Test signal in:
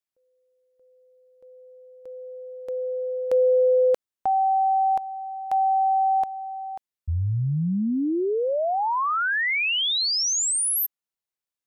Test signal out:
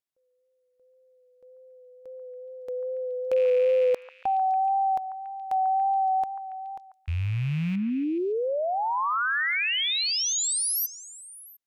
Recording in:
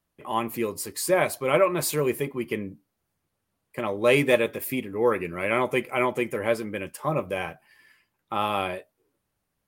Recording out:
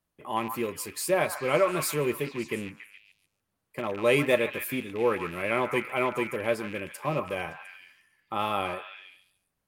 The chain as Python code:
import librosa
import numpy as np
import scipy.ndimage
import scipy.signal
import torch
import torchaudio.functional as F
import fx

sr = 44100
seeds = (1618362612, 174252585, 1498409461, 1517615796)

y = fx.rattle_buzz(x, sr, strikes_db=-37.0, level_db=-28.0)
y = fx.echo_stepped(y, sr, ms=141, hz=1200.0, octaves=0.7, feedback_pct=70, wet_db=-6.0)
y = fx.wow_flutter(y, sr, seeds[0], rate_hz=2.1, depth_cents=25.0)
y = F.gain(torch.from_numpy(y), -3.0).numpy()